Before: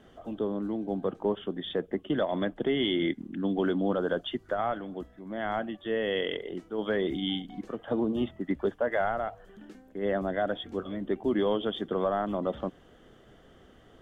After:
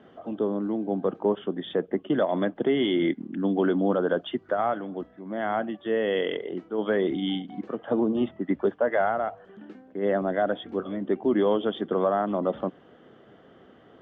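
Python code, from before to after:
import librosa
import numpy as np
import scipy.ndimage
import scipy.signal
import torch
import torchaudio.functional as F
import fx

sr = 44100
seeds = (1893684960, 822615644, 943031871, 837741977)

y = fx.bandpass_edges(x, sr, low_hz=150.0, high_hz=2600.0)
y = fx.peak_eq(y, sr, hz=1900.0, db=-2.0, octaves=0.77)
y = F.gain(torch.from_numpy(y), 4.5).numpy()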